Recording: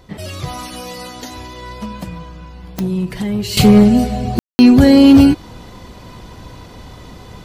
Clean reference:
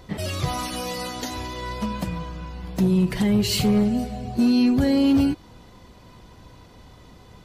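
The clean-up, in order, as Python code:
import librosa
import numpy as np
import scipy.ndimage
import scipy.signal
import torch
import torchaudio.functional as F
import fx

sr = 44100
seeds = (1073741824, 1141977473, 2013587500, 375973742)

y = fx.fix_declick_ar(x, sr, threshold=10.0)
y = fx.fix_ambience(y, sr, seeds[0], print_start_s=5.63, print_end_s=6.13, start_s=4.39, end_s=4.59)
y = fx.fix_level(y, sr, at_s=3.57, step_db=-11.5)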